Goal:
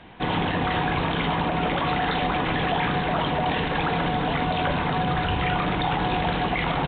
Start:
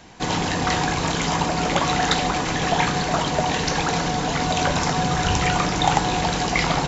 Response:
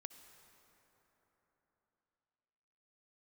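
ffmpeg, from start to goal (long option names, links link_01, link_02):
-af "alimiter=limit=-14.5dB:level=0:latency=1:release=30,aresample=8000,aresample=44100"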